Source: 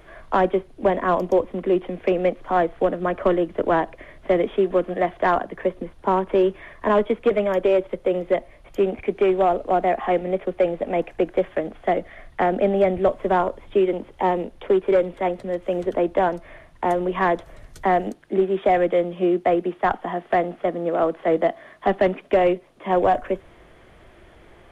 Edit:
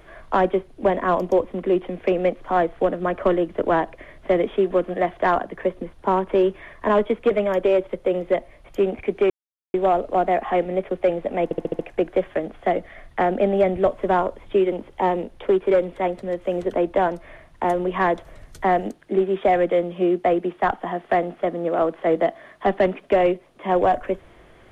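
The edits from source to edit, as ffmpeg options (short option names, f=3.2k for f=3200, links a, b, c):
-filter_complex "[0:a]asplit=7[a][b][c][d][e][f][g];[a]atrim=end=9.3,asetpts=PTS-STARTPTS,afade=t=out:st=9.296:d=0.004:c=hsin,apad=pad_dur=0.44[h];[b]atrim=start=9.3:end=11.072,asetpts=PTS-STARTPTS,afade=t=in:d=0.004:c=hsin[i];[c]atrim=start=10.998:end=11.072[j];[d]atrim=start=10.998:end=11.072[k];[e]atrim=start=10.998:end=11.072[l];[f]atrim=start=10.998:end=11.072[m];[g]atrim=start=10.998[n];[h][i]concat=n=2:v=0:a=1[o];[o][j]acrossfade=d=0.004:c1=hsin:c2=hsin[p];[p][k]acrossfade=d=0.004:c1=hsin:c2=hsin[q];[q][l]acrossfade=d=0.004:c1=hsin:c2=hsin[r];[r][m]acrossfade=d=0.004:c1=hsin:c2=hsin[s];[s][n]acrossfade=d=0.004:c1=hsin:c2=hsin"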